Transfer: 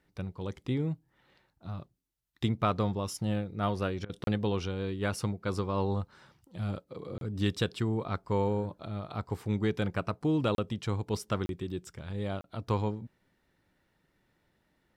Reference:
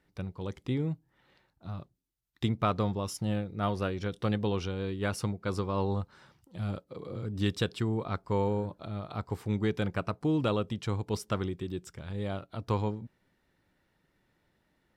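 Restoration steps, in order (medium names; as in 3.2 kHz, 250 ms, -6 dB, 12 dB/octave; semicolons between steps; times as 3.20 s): interpolate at 4.24/7.18/10.55/11.46/12.41 s, 32 ms; interpolate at 4.05 s, 44 ms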